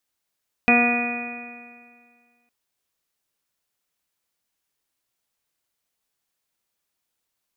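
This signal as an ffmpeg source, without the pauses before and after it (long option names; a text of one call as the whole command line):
ffmpeg -f lavfi -i "aevalsrc='0.133*pow(10,-3*t/1.96)*sin(2*PI*239.08*t)+0.0596*pow(10,-3*t/1.96)*sin(2*PI*478.65*t)+0.106*pow(10,-3*t/1.96)*sin(2*PI*719.19*t)+0.0211*pow(10,-3*t/1.96)*sin(2*PI*961.19*t)+0.0335*pow(10,-3*t/1.96)*sin(2*PI*1205.11*t)+0.0335*pow(10,-3*t/1.96)*sin(2*PI*1451.45*t)+0.0211*pow(10,-3*t/1.96)*sin(2*PI*1700.64*t)+0.0562*pow(10,-3*t/1.96)*sin(2*PI*1953.16*t)+0.0211*pow(10,-3*t/1.96)*sin(2*PI*2209.44*t)+0.188*pow(10,-3*t/1.96)*sin(2*PI*2469.92*t)':duration=1.81:sample_rate=44100" out.wav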